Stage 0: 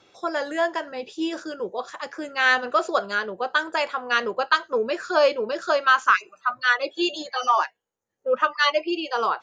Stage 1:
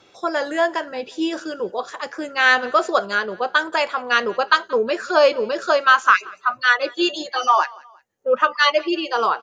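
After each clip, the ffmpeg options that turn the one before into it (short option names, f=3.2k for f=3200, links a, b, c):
-af "aecho=1:1:178|356:0.0631|0.0246,volume=4dB"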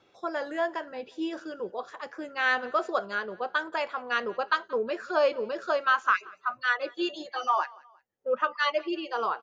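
-af "highshelf=f=4.8k:g=-11.5,volume=-9dB"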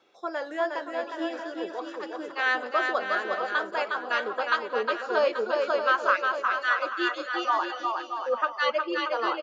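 -af "highpass=270,aecho=1:1:360|630|832.5|984.4|1098:0.631|0.398|0.251|0.158|0.1"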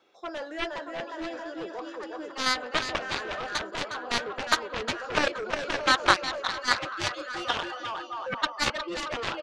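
-af "aeval=exprs='0.335*(cos(1*acos(clip(val(0)/0.335,-1,1)))-cos(1*PI/2))+0.0944*(cos(3*acos(clip(val(0)/0.335,-1,1)))-cos(3*PI/2))+0.0266*(cos(7*acos(clip(val(0)/0.335,-1,1)))-cos(7*PI/2))':c=same,volume=7dB"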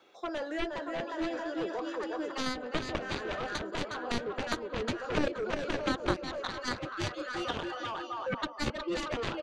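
-filter_complex "[0:a]bandreject=f=5.3k:w=16,acrossover=split=460[a][b];[b]acompressor=threshold=-40dB:ratio=4[c];[a][c]amix=inputs=2:normalize=0,volume=3.5dB"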